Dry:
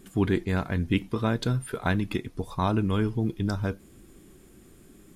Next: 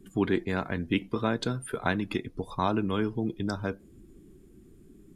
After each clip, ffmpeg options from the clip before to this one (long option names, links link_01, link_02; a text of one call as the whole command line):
ffmpeg -i in.wav -filter_complex "[0:a]acrossover=split=190[link_01][link_02];[link_01]acompressor=threshold=-37dB:ratio=8[link_03];[link_03][link_02]amix=inputs=2:normalize=0,afftdn=noise_reduction=12:noise_floor=-51" out.wav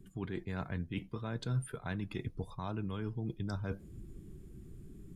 ffmpeg -i in.wav -af "areverse,acompressor=threshold=-36dB:ratio=6,areverse,lowshelf=frequency=190:width_type=q:width=1.5:gain=7,volume=-1dB" out.wav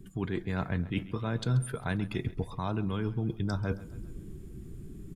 ffmpeg -i in.wav -af "aecho=1:1:134|268|402|536:0.126|0.0667|0.0354|0.0187,volume=6.5dB" out.wav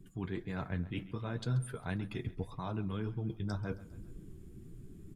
ffmpeg -i in.wav -af "flanger=delay=5.6:depth=6.6:regen=-35:speed=1.9:shape=triangular,volume=-2.5dB" out.wav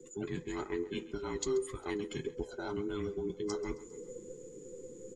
ffmpeg -i in.wav -af "afftfilt=real='real(if(between(b,1,1008),(2*floor((b-1)/24)+1)*24-b,b),0)':imag='imag(if(between(b,1,1008),(2*floor((b-1)/24)+1)*24-b,b),0)*if(between(b,1,1008),-1,1)':win_size=2048:overlap=0.75,lowpass=frequency=6900:width_type=q:width=16,bandreject=frequency=940:width=15" out.wav